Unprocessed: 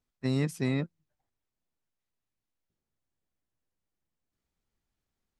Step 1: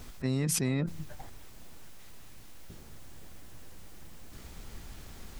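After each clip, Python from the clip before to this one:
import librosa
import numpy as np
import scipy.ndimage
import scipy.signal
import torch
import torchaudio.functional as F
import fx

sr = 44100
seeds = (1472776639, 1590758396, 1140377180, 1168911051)

y = fx.low_shelf(x, sr, hz=82.0, db=6.0)
y = fx.env_flatten(y, sr, amount_pct=100)
y = y * 10.0 ** (-4.0 / 20.0)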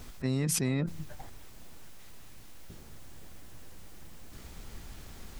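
y = x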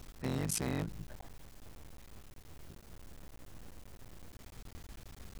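y = fx.cycle_switch(x, sr, every=3, mode='muted')
y = y * 10.0 ** (-4.0 / 20.0)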